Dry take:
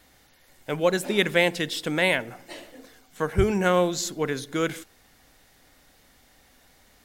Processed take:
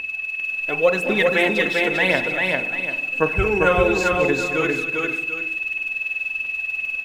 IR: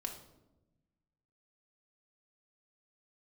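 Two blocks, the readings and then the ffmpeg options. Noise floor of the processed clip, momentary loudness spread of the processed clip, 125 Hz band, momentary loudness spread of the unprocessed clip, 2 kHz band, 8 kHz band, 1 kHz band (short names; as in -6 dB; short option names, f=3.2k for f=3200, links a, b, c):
-31 dBFS, 6 LU, +1.0 dB, 19 LU, +10.0 dB, -4.0 dB, +5.5 dB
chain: -filter_complex "[0:a]bass=f=250:g=-5,treble=f=4k:g=-11,aeval=exprs='val(0)+0.0355*sin(2*PI*2600*n/s)':c=same,aphaser=in_gain=1:out_gain=1:delay=4.2:decay=0.59:speed=0.93:type=triangular,aecho=1:1:223|398|519|741:0.224|0.708|0.112|0.224,asplit=2[a][b];[1:a]atrim=start_sample=2205,lowpass=1.4k,adelay=38[c];[b][c]afir=irnorm=-1:irlink=0,volume=-8.5dB[d];[a][d]amix=inputs=2:normalize=0,volume=1.5dB"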